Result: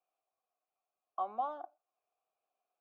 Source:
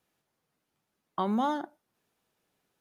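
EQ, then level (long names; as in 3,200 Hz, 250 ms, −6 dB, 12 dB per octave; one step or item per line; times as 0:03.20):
formant filter a
high-pass filter 330 Hz 12 dB per octave
high-shelf EQ 2,900 Hz −8 dB
+2.0 dB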